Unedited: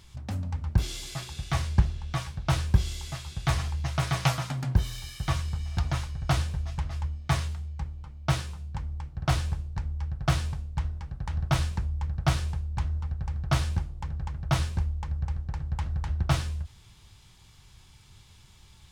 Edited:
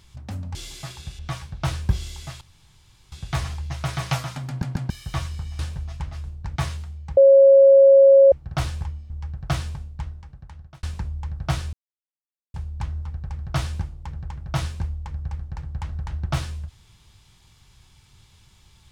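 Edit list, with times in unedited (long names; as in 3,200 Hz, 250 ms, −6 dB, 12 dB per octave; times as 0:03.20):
0:00.55–0:00.87: remove
0:01.51–0:02.04: remove
0:03.26: splice in room tone 0.71 s
0:04.62: stutter in place 0.14 s, 3 plays
0:05.73–0:06.37: remove
0:07.02–0:07.27: swap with 0:09.56–0:09.88
0:07.88–0:09.03: beep over 547 Hz −8 dBFS
0:10.59–0:11.61: fade out
0:12.51: splice in silence 0.81 s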